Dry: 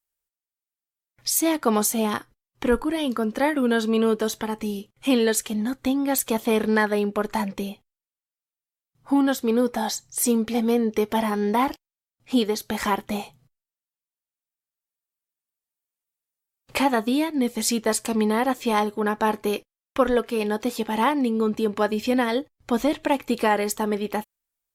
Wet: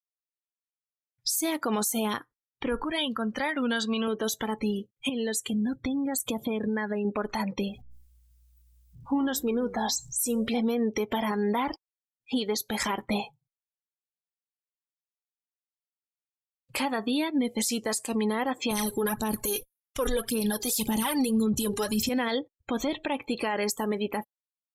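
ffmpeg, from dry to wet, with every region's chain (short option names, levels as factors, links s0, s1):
-filter_complex "[0:a]asettb=1/sr,asplit=3[s0][s1][s2];[s0]atrim=end=2.844[s3];[s1]atrim=start=2.84:end=4.08,asetpts=PTS-STARTPTS,afade=t=in:d=0.004:c=qsin,afade=t=out:st=1.236:d=0.004:c=qsin,equalizer=f=380:t=o:w=1.2:g=-10,acompressor=mode=upward:threshold=0.0251:ratio=2.5:attack=3.2:release=140:knee=2.83:detection=peak[s4];[s2]atrim=start=4.076[s5];[s3][s4]acrossfade=d=0.004:c1=hsin:c2=qsin[s6];[s6][s5]acrossfade=d=0.004:c1=qsin:c2=hsin,asettb=1/sr,asplit=3[s7][s8][s9];[s7]atrim=end=5.094[s10];[s8]atrim=start=5.09:end=7.05,asetpts=PTS-STARTPTS,afade=t=in:d=0.004:c=qsin,afade=t=out:st=1.956:d=0.004:c=qsin,bandreject=f=49.16:t=h:w=4,bandreject=f=98.32:t=h:w=4,bandreject=f=147.48:t=h:w=4,acompressor=threshold=0.0355:ratio=5:attack=3.2:release=140:knee=1:detection=peak,equalizer=f=110:t=o:w=1.9:g=9[s11];[s9]atrim=start=7.046[s12];[s10][s11]acrossfade=d=0.004:c1=hsin:c2=qsin[s13];[s13][s12]acrossfade=d=0.004:c1=qsin:c2=hsin,asettb=1/sr,asplit=3[s14][s15][s16];[s14]atrim=end=7.684[s17];[s15]atrim=start=7.68:end=10.48,asetpts=PTS-STARTPTS,afade=t=in:d=0.004:c=qsin,afade=t=out:st=2.796:d=0.004:c=qsin,aeval=exprs='val(0)+0.5*0.0133*sgn(val(0))':c=same,flanger=delay=6.1:depth=4.6:regen=89:speed=1.7:shape=triangular,aeval=exprs='val(0)+0.00224*(sin(2*PI*60*n/s)+sin(2*PI*2*60*n/s)/2+sin(2*PI*3*60*n/s)/3+sin(2*PI*4*60*n/s)/4+sin(2*PI*5*60*n/s)/5)':c=same[s18];[s16]atrim=start=10.476[s19];[s17][s18]acrossfade=d=0.004:c1=hsin:c2=qsin[s20];[s20][s19]acrossfade=d=0.004:c1=qsin:c2=hsin,asettb=1/sr,asplit=3[s21][s22][s23];[s21]atrim=end=18.714[s24];[s22]atrim=start=18.71:end=22.09,asetpts=PTS-STARTPTS,afade=t=in:d=0.004:c=qsin,afade=t=out:st=3.376:d=0.004:c=qsin,bass=f=250:g=12,treble=f=4000:g=14,aphaser=in_gain=1:out_gain=1:delay=2.5:decay=0.64:speed=1.8:type=sinusoidal[s25];[s23]atrim=start=22.086[s26];[s24][s25]acrossfade=d=0.004:c1=hsin:c2=qsin[s27];[s27][s26]acrossfade=d=0.004:c1=qsin:c2=hsin,afftdn=nr=34:nf=-38,highshelf=f=3100:g=12,alimiter=limit=0.112:level=0:latency=1:release=107"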